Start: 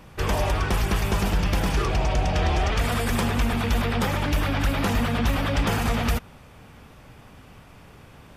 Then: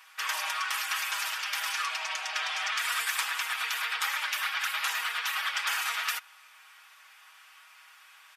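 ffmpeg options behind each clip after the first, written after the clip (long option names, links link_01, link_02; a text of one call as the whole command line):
ffmpeg -i in.wav -af "highpass=frequency=1200:width=0.5412,highpass=frequency=1200:width=1.3066,aecho=1:1:6.3:0.59" out.wav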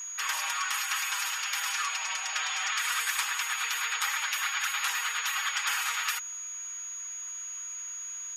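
ffmpeg -i in.wav -af "aeval=exprs='val(0)+0.0158*sin(2*PI*6700*n/s)':channel_layout=same,equalizer=frequency=650:width_type=o:width=0.22:gain=-10.5" out.wav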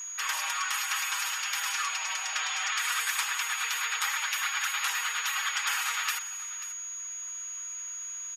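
ffmpeg -i in.wav -af "aecho=1:1:537:0.158" out.wav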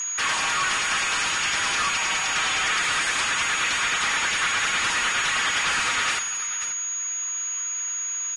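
ffmpeg -i in.wav -filter_complex "[0:a]asplit=2[link_01][link_02];[link_02]highpass=frequency=720:poles=1,volume=29dB,asoftclip=type=tanh:threshold=-14dB[link_03];[link_01][link_03]amix=inputs=2:normalize=0,lowpass=frequency=3500:poles=1,volume=-6dB,volume=-1.5dB" -ar 22050 -c:a libvorbis -b:a 32k out.ogg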